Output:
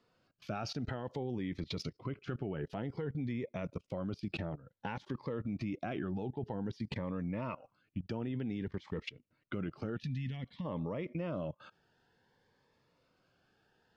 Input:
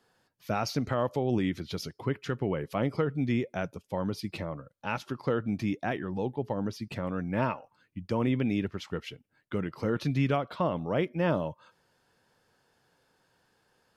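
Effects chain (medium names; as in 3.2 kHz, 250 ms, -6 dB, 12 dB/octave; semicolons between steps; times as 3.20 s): level held to a coarse grid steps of 20 dB; time-frequency box 9.97–10.65 s, 270–1700 Hz -17 dB; compression 2:1, threshold -46 dBFS, peak gain reduction 6 dB; low-pass 4.1 kHz 12 dB/octave; Shepard-style phaser rising 0.54 Hz; trim +9 dB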